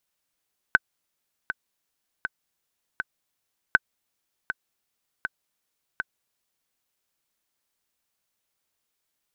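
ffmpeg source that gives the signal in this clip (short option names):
-f lavfi -i "aevalsrc='pow(10,(-3-11.5*gte(mod(t,4*60/80),60/80))/20)*sin(2*PI*1520*mod(t,60/80))*exp(-6.91*mod(t,60/80)/0.03)':d=6:s=44100"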